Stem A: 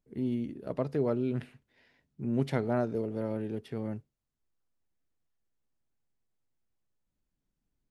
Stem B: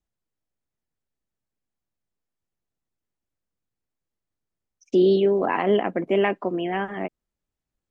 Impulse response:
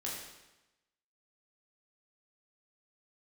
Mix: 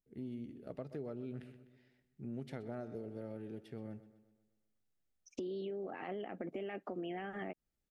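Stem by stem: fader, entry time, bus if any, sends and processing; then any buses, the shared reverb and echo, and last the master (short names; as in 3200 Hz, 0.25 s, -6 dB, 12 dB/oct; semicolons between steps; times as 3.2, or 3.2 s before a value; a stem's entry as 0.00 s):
-9.5 dB, 0.00 s, no send, echo send -16 dB, dry
-4.0 dB, 0.45 s, no send, no echo send, compressor, threshold -22 dBFS, peak gain reduction 8 dB; limiter -21 dBFS, peak gain reduction 8 dB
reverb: off
echo: feedback echo 0.126 s, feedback 51%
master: notch 1000 Hz, Q 5.1; compressor 6:1, threshold -39 dBFS, peak gain reduction 10 dB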